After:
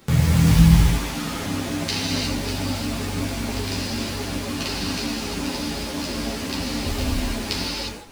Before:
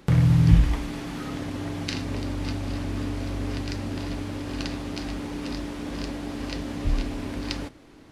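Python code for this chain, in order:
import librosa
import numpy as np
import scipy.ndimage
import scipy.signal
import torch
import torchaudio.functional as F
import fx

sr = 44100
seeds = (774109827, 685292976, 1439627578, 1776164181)

p1 = fx.quant_float(x, sr, bits=2)
p2 = x + (p1 * librosa.db_to_amplitude(-4.0))
p3 = fx.high_shelf(p2, sr, hz=3500.0, db=9.5)
p4 = fx.rev_gated(p3, sr, seeds[0], gate_ms=380, shape='flat', drr_db=-4.5)
p5 = fx.ensemble(p4, sr)
y = p5 * librosa.db_to_amplitude(-1.5)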